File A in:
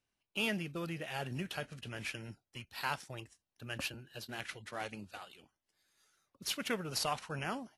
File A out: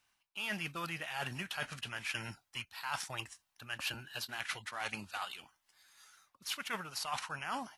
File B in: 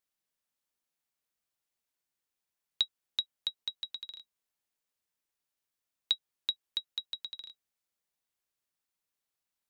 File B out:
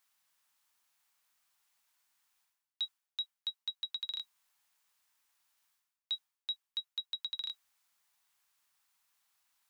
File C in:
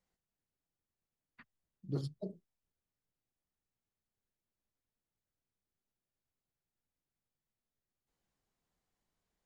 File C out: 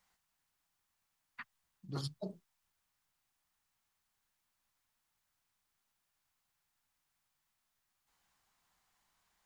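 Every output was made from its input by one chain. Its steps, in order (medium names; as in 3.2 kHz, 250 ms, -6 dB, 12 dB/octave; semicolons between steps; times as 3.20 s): resonant low shelf 670 Hz -10 dB, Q 1.5; reverse; compression 16:1, threshold -46 dBFS; reverse; trim +11 dB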